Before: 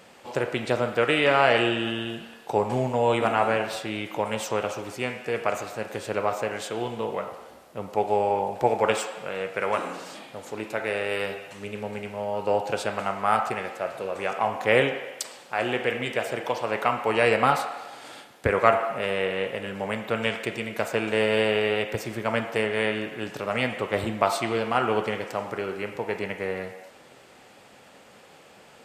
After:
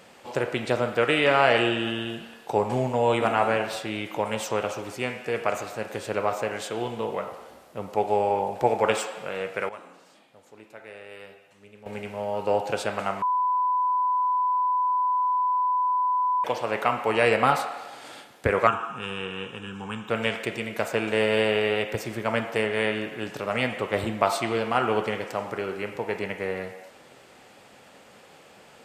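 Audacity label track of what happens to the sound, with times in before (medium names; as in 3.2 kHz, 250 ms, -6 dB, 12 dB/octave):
9.240000	12.310000	dip -15.5 dB, fades 0.45 s logarithmic
13.220000	16.440000	bleep 999 Hz -20.5 dBFS
18.670000	20.100000	static phaser centre 3 kHz, stages 8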